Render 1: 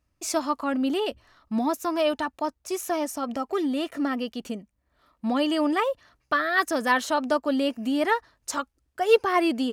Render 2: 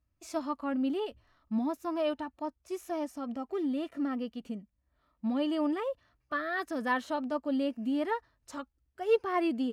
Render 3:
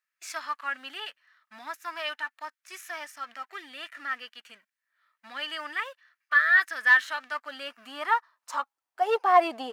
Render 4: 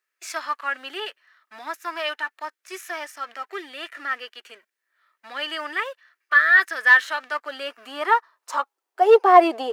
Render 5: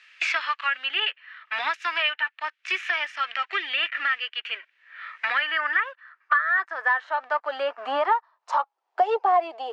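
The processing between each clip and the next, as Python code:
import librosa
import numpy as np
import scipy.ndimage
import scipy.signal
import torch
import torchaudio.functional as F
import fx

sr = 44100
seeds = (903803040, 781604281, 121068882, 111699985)

y1 = fx.hpss(x, sr, part='percussive', gain_db=-8)
y1 = fx.bass_treble(y1, sr, bass_db=5, treble_db=-5)
y1 = y1 * librosa.db_to_amplitude(-7.0)
y2 = fx.leveller(y1, sr, passes=1)
y2 = fx.filter_sweep_highpass(y2, sr, from_hz=1700.0, to_hz=780.0, start_s=7.22, end_s=9.14, q=3.1)
y2 = y2 * librosa.db_to_amplitude(3.5)
y3 = fx.highpass_res(y2, sr, hz=380.0, q=4.0)
y3 = y3 * librosa.db_to_amplitude(4.5)
y4 = fx.filter_sweep_bandpass(y3, sr, from_hz=2800.0, to_hz=800.0, start_s=4.82, end_s=6.93, q=2.4)
y4 = fx.bandpass_edges(y4, sr, low_hz=220.0, high_hz=6100.0)
y4 = fx.band_squash(y4, sr, depth_pct=100)
y4 = y4 * librosa.db_to_amplitude(5.5)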